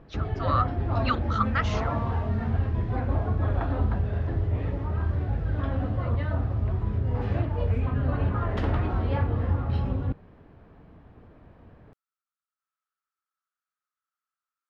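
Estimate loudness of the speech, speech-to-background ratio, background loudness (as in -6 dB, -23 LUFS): -30.5 LUFS, -2.5 dB, -28.0 LUFS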